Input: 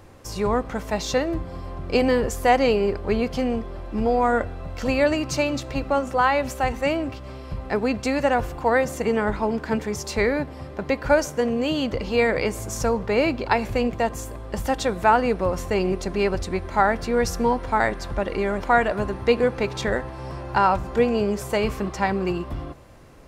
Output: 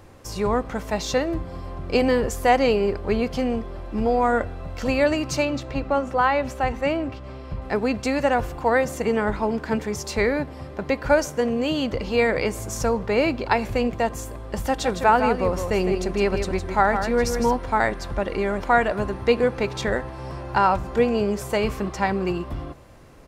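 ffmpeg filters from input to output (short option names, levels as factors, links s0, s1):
-filter_complex "[0:a]asettb=1/sr,asplit=3[s0][s1][s2];[s0]atrim=end=5.454[s3];[s1]atrim=start=5.45:end=7.62,asetpts=PTS-STARTPTS,afade=t=in:d=0.004:c=qsin,afade=t=out:st=2.166:d=0.004:c=qsin,lowpass=f=3600:p=1[s4];[s2]atrim=start=7.616[s5];[s3][s4]acrossfade=d=0.004:c1=hsin:c2=qsin[s6];[s6][s5]acrossfade=d=0.004:c1=qsin:c2=hsin,asplit=3[s7][s8][s9];[s7]afade=t=out:st=14.82:d=0.02[s10];[s8]aecho=1:1:159:0.422,afade=t=in:st=14.82:d=0.02,afade=t=out:st=17.55:d=0.02[s11];[s9]afade=t=in:st=17.55:d=0.02[s12];[s10][s11][s12]amix=inputs=3:normalize=0"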